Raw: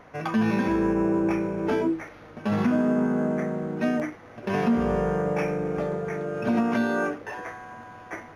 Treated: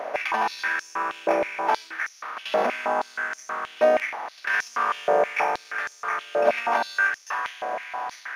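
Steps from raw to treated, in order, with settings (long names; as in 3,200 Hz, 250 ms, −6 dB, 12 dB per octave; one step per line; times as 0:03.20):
compressor on every frequency bin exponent 0.6
high-pass on a step sequencer 6.3 Hz 610–5,900 Hz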